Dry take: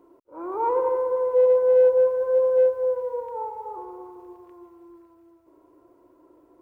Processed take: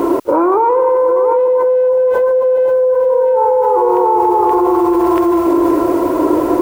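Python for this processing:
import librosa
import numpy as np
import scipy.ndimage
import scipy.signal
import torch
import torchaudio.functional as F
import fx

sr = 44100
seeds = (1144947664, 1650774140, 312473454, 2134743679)

p1 = fx.low_shelf(x, sr, hz=140.0, db=-5.5)
p2 = p1 + fx.echo_single(p1, sr, ms=685, db=-5.5, dry=0)
p3 = fx.env_flatten(p2, sr, amount_pct=100)
y = p3 * librosa.db_to_amplitude(2.5)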